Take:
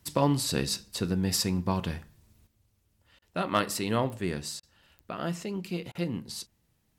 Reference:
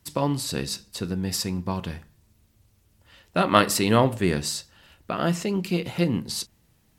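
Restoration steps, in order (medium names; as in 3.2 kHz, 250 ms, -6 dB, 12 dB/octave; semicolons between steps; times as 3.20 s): clip repair -13 dBFS; de-click; interpolate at 3.19/4.60/5.92 s, 29 ms; trim 0 dB, from 2.47 s +8.5 dB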